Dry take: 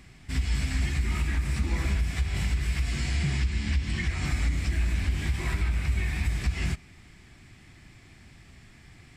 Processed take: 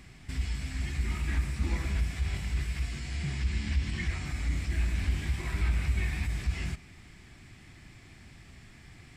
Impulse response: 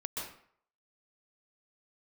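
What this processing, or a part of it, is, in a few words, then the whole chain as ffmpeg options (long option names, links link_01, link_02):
de-esser from a sidechain: -filter_complex "[0:a]asplit=2[link_01][link_02];[link_02]highpass=frequency=5600:width=0.5412,highpass=frequency=5600:width=1.3066,apad=whole_len=404116[link_03];[link_01][link_03]sidechaincompress=threshold=-51dB:ratio=8:attack=4.5:release=50"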